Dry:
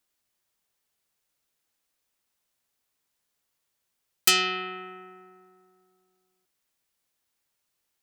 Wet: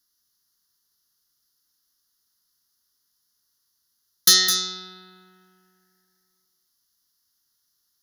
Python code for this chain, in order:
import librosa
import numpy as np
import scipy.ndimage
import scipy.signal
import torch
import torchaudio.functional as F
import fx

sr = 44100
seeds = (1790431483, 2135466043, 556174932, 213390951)

y = fx.band_shelf(x, sr, hz=5800.0, db=13.5, octaves=1.7)
y = np.clip(y, -10.0 ** (-6.0 / 20.0), 10.0 ** (-6.0 / 20.0))
y = fx.formant_shift(y, sr, semitones=5)
y = fx.fixed_phaser(y, sr, hz=2400.0, stages=6)
y = y + 10.0 ** (-7.5 / 20.0) * np.pad(y, (int(210 * sr / 1000.0), 0))[:len(y)]
y = y * 10.0 ** (3.0 / 20.0)